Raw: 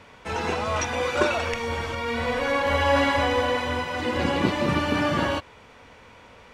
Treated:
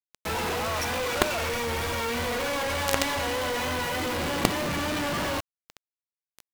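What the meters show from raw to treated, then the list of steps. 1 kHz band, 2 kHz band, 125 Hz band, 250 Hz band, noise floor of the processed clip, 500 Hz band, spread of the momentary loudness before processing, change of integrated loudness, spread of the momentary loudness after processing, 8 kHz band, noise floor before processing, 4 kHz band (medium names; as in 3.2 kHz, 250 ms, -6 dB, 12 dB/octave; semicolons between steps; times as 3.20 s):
-4.0 dB, -3.0 dB, -4.5 dB, -5.0 dB, under -85 dBFS, -4.5 dB, 7 LU, -3.0 dB, 3 LU, +5.0 dB, -50 dBFS, 0.0 dB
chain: saturation -9 dBFS, distortion -27 dB; companded quantiser 2-bit; vibrato 3.3 Hz 41 cents; trim -3 dB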